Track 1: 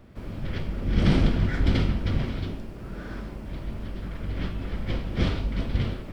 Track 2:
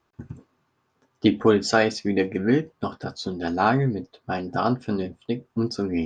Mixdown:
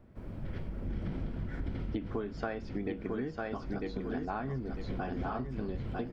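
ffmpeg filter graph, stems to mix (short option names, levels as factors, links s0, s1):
-filter_complex "[0:a]equalizer=f=3500:w=0.79:g=-6,bandreject=f=1200:w=22,volume=0.447,asplit=2[s0][s1];[s1]volume=0.398[s2];[1:a]adelay=700,volume=0.631,asplit=2[s3][s4];[s4]volume=0.473[s5];[s2][s5]amix=inputs=2:normalize=0,aecho=0:1:948|1896|2844|3792:1|0.25|0.0625|0.0156[s6];[s0][s3][s6]amix=inputs=3:normalize=0,acrossover=split=3300[s7][s8];[s8]acompressor=threshold=0.002:ratio=4:attack=1:release=60[s9];[s7][s9]amix=inputs=2:normalize=0,highshelf=f=4200:g=-7.5,acompressor=threshold=0.0251:ratio=10"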